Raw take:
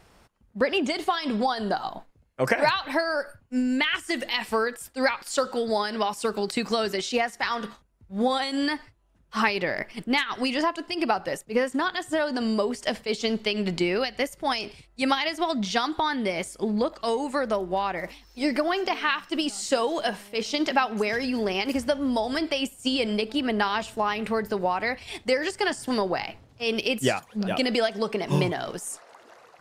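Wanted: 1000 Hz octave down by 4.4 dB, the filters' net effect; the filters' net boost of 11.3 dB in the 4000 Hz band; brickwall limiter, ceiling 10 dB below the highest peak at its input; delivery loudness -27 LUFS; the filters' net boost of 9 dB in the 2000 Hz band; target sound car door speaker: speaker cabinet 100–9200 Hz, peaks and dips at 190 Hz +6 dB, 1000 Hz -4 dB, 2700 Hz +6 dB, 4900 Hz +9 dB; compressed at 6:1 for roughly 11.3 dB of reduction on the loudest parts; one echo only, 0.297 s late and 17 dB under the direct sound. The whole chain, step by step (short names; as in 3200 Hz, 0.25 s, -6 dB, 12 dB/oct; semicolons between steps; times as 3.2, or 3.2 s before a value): bell 1000 Hz -7 dB; bell 2000 Hz +9 dB; bell 4000 Hz +6 dB; compressor 6:1, threshold -25 dBFS; limiter -19 dBFS; speaker cabinet 100–9200 Hz, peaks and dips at 190 Hz +6 dB, 1000 Hz -4 dB, 2700 Hz +6 dB, 4900 Hz +9 dB; echo 0.297 s -17 dB; gain +0.5 dB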